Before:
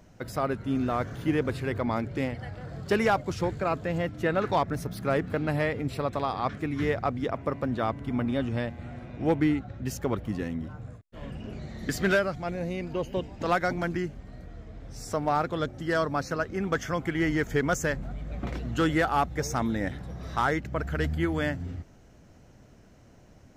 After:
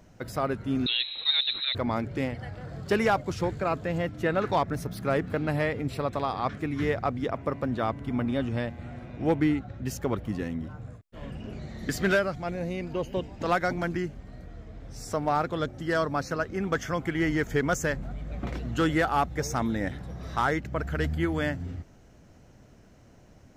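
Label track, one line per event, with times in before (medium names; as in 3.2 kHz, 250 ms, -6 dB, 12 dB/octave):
0.860000	1.750000	frequency inversion carrier 4 kHz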